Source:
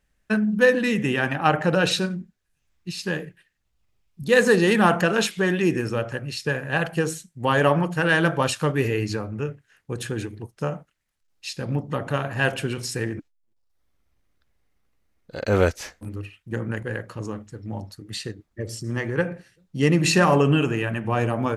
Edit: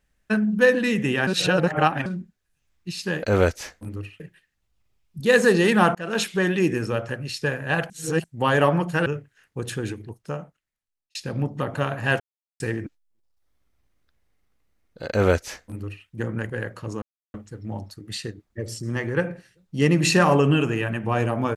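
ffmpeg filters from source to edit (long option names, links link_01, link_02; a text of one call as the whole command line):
ffmpeg -i in.wav -filter_complex "[0:a]asplit=13[link_01][link_02][link_03][link_04][link_05][link_06][link_07][link_08][link_09][link_10][link_11][link_12][link_13];[link_01]atrim=end=1.272[link_14];[link_02]atrim=start=1.268:end=2.062,asetpts=PTS-STARTPTS,areverse[link_15];[link_03]atrim=start=2.058:end=3.232[link_16];[link_04]atrim=start=15.428:end=16.402[link_17];[link_05]atrim=start=3.228:end=4.98,asetpts=PTS-STARTPTS,afade=type=out:start_time=1.748:duration=0.004:curve=hsin[link_18];[link_06]atrim=start=4.98:end=6.932,asetpts=PTS-STARTPTS,afade=type=in:duration=0.3[link_19];[link_07]atrim=start=6.928:end=7.272,asetpts=PTS-STARTPTS,areverse[link_20];[link_08]atrim=start=7.268:end=8.092[link_21];[link_09]atrim=start=9.388:end=11.48,asetpts=PTS-STARTPTS,afade=type=out:start_time=0.792:duration=1.3[link_22];[link_10]atrim=start=11.48:end=12.53,asetpts=PTS-STARTPTS,afade=type=in:duration=0.004:curve=hsin,afade=type=out:start_time=1.046:duration=0.004:curve=hsin[link_23];[link_11]atrim=start=12.53:end=12.93,asetpts=PTS-STARTPTS,volume=0[link_24];[link_12]atrim=start=12.93:end=17.35,asetpts=PTS-STARTPTS,afade=type=in:duration=0.004:curve=hsin,afade=type=out:start_time=4.416:duration=0.004:curve=hsin,apad=pad_dur=0.32[link_25];[link_13]atrim=start=17.35,asetpts=PTS-STARTPTS,afade=type=in:duration=0.004:curve=hsin[link_26];[link_14][link_15]acrossfade=duration=0.004:curve1=hsin:curve2=hsin[link_27];[link_27][link_16]acrossfade=duration=0.004:curve1=hsin:curve2=hsin[link_28];[link_28][link_17]acrossfade=duration=0.004:curve1=hsin:curve2=hsin[link_29];[link_18][link_19]concat=n=2:v=0:a=1[link_30];[link_29][link_30]acrossfade=duration=0.004:curve1=hsin:curve2=hsin[link_31];[link_31][link_20]acrossfade=duration=0.004:curve1=hsin:curve2=hsin[link_32];[link_32][link_21]acrossfade=duration=0.004:curve1=hsin:curve2=hsin[link_33];[link_22][link_23][link_24][link_25][link_26]concat=n=5:v=0:a=1[link_34];[link_33][link_34]acrossfade=duration=0.004:curve1=hsin:curve2=hsin" out.wav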